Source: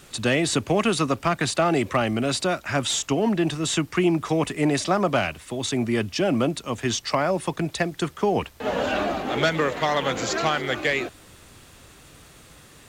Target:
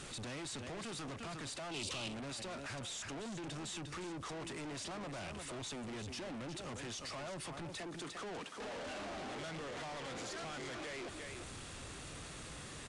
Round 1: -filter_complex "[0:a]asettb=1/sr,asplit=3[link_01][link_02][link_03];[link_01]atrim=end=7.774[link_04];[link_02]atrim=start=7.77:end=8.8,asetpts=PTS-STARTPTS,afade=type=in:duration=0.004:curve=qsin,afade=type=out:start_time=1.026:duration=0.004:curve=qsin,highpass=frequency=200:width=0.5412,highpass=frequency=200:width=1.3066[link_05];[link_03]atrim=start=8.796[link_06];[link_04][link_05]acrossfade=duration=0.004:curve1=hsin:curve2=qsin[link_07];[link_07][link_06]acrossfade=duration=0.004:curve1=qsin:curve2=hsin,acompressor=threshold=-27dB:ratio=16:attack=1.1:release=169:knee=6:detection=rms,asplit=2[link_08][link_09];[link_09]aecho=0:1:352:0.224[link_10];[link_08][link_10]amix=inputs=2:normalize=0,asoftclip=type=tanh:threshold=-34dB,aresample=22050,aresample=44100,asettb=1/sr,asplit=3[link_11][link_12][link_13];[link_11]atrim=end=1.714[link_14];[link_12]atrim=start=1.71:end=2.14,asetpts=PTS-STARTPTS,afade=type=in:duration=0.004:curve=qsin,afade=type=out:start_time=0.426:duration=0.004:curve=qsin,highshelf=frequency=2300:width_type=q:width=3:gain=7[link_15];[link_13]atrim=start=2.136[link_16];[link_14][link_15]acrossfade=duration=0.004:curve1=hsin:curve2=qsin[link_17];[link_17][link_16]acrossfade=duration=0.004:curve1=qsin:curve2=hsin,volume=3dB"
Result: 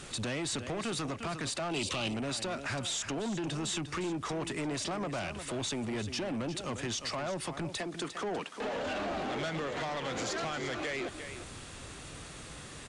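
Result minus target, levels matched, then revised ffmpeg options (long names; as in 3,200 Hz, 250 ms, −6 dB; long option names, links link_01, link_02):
soft clipping: distortion −7 dB
-filter_complex "[0:a]asettb=1/sr,asplit=3[link_01][link_02][link_03];[link_01]atrim=end=7.774[link_04];[link_02]atrim=start=7.77:end=8.8,asetpts=PTS-STARTPTS,afade=type=in:duration=0.004:curve=qsin,afade=type=out:start_time=1.026:duration=0.004:curve=qsin,highpass=frequency=200:width=0.5412,highpass=frequency=200:width=1.3066[link_05];[link_03]atrim=start=8.796[link_06];[link_04][link_05]acrossfade=duration=0.004:curve1=hsin:curve2=qsin[link_07];[link_07][link_06]acrossfade=duration=0.004:curve1=qsin:curve2=hsin,acompressor=threshold=-27dB:ratio=16:attack=1.1:release=169:knee=6:detection=rms,asplit=2[link_08][link_09];[link_09]aecho=0:1:352:0.224[link_10];[link_08][link_10]amix=inputs=2:normalize=0,asoftclip=type=tanh:threshold=-46dB,aresample=22050,aresample=44100,asettb=1/sr,asplit=3[link_11][link_12][link_13];[link_11]atrim=end=1.714[link_14];[link_12]atrim=start=1.71:end=2.14,asetpts=PTS-STARTPTS,afade=type=in:duration=0.004:curve=qsin,afade=type=out:start_time=0.426:duration=0.004:curve=qsin,highshelf=frequency=2300:width_type=q:width=3:gain=7[link_15];[link_13]atrim=start=2.136[link_16];[link_14][link_15]acrossfade=duration=0.004:curve1=hsin:curve2=qsin[link_17];[link_17][link_16]acrossfade=duration=0.004:curve1=qsin:curve2=hsin,volume=3dB"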